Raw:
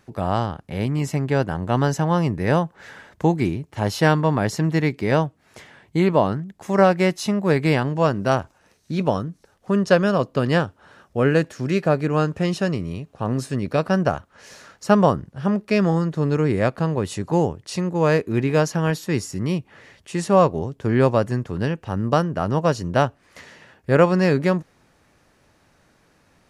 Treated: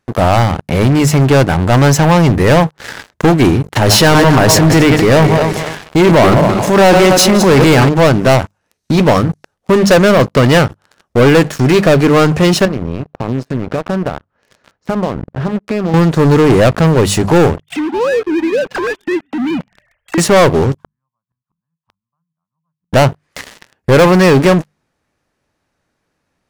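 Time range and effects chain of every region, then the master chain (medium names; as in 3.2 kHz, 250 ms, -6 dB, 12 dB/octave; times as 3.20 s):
3.75–7.89 s: backward echo that repeats 127 ms, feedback 56%, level -12 dB + transient shaper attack -2 dB, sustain +9 dB
12.65–15.94 s: compression 4:1, threshold -32 dBFS + tape spacing loss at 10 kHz 26 dB
17.56–20.18 s: formants replaced by sine waves + compression 2.5:1, threshold -37 dBFS + frequency-shifting echo 115 ms, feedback 59%, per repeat -69 Hz, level -19 dB
20.78–22.93 s: zero-crossing glitches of -21.5 dBFS + two resonant band-passes 410 Hz, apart 2.7 oct + inverted gate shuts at -32 dBFS, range -38 dB
whole clip: hum notches 50/100/150/200 Hz; dynamic bell 180 Hz, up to -4 dB, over -33 dBFS, Q 3.1; waveshaping leveller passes 5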